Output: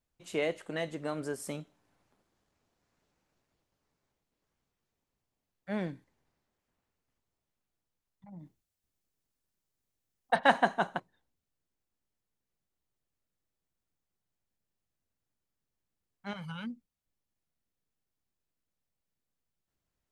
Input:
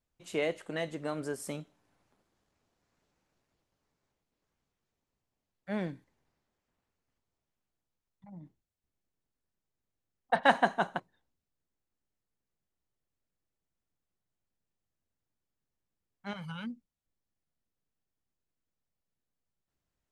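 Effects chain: 8.39–10.39 s: treble shelf 3.7 kHz +7 dB

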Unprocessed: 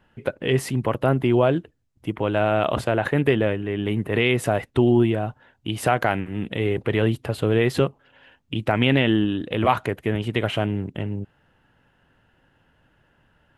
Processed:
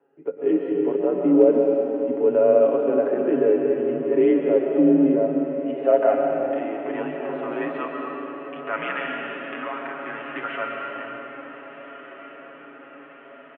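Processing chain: hum notches 50/100/150/200/250/300 Hz; mistuned SSB -74 Hz 270–3100 Hz; comb 7.2 ms, depth 74%; in parallel at +2.5 dB: peak limiter -12 dBFS, peak gain reduction 9 dB; 8.93–9.93 s: on the sum: compression, threshold -15 dBFS, peak gain reduction 9 dB; band-pass sweep 420 Hz -> 1.3 kHz, 4.90–8.47 s; hard clipper -5 dBFS, distortion -44 dB; echo that smears into a reverb 1573 ms, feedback 60%, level -14.5 dB; on a send at -2.5 dB: reverberation RT60 3.4 s, pre-delay 95 ms; on the sum: harmonic-percussive split percussive -9 dB

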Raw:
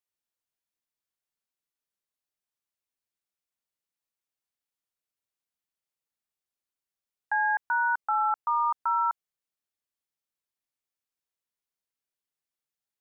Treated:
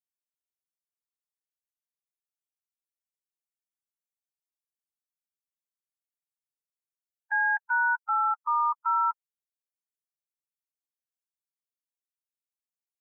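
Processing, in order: expander on every frequency bin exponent 3; high-pass 990 Hz 24 dB/octave; trim +3 dB

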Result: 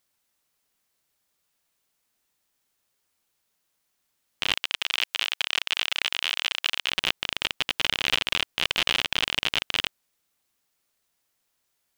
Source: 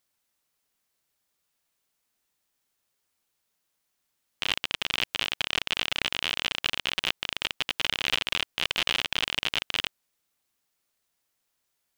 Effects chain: 4.56–6.91 s: high-pass 980 Hz 6 dB/octave; trim +2.5 dB

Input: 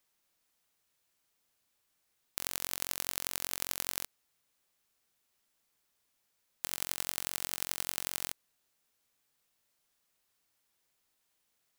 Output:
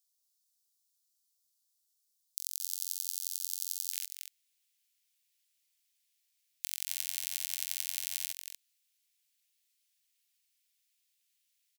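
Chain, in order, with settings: inverse Chebyshev high-pass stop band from 740 Hz, stop band 80 dB, from 3.91 s stop band from 380 Hz; delay 232 ms -7 dB

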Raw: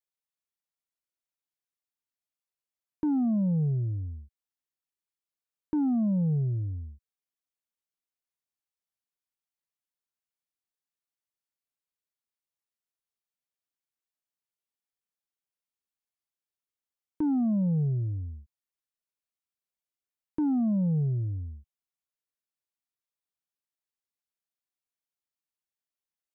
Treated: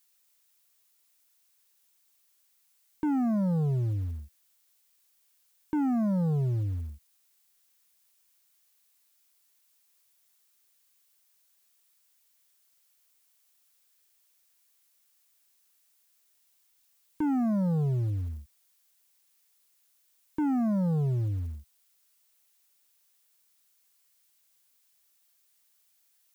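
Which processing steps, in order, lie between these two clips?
added noise blue -72 dBFS; in parallel at -6.5 dB: short-mantissa float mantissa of 2-bit; on the sum: saturation -24 dBFS, distortion -17 dB

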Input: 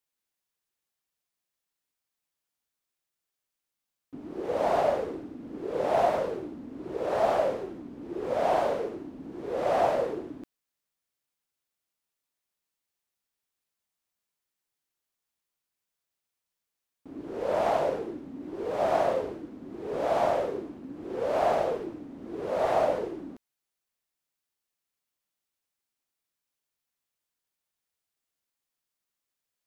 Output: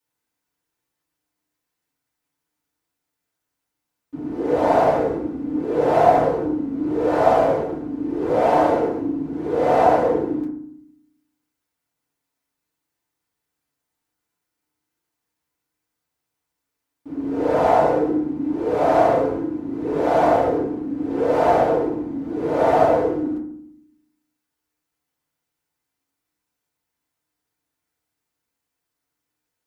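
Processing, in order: FDN reverb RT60 0.65 s, low-frequency decay 1.6×, high-frequency decay 0.3×, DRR -7.5 dB

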